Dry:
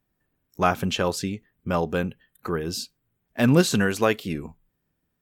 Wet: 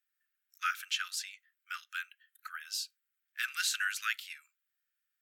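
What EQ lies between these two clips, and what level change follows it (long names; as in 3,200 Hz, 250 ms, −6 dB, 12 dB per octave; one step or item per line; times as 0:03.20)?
Butterworth high-pass 1,300 Hz 96 dB per octave
−4.5 dB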